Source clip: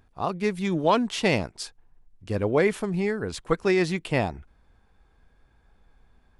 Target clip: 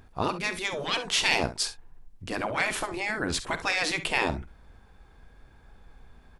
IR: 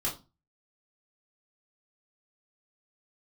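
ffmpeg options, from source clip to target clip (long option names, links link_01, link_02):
-af "acontrast=80,afftfilt=real='re*lt(hypot(re,im),0.355)':imag='im*lt(hypot(re,im),0.355)':win_size=1024:overlap=0.75,aecho=1:1:48|67:0.188|0.188"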